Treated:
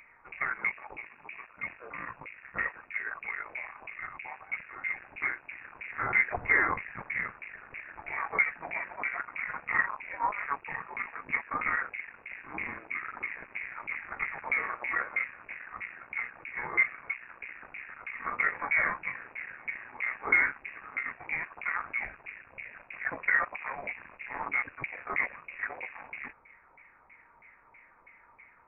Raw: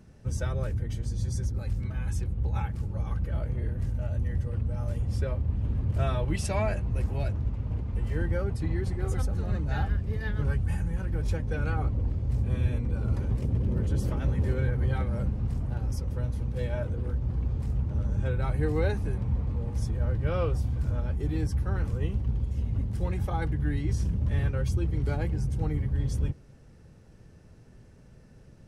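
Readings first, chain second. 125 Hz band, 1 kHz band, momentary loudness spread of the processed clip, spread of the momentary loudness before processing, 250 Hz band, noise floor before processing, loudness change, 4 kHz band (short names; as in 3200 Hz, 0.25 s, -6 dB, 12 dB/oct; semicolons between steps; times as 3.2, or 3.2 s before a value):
-30.0 dB, +6.0 dB, 16 LU, 4 LU, -16.5 dB, -52 dBFS, -2.5 dB, under -10 dB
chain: tube stage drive 28 dB, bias 0.6; LFO high-pass saw up 3.1 Hz 480–2100 Hz; inverted band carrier 2700 Hz; gain +9 dB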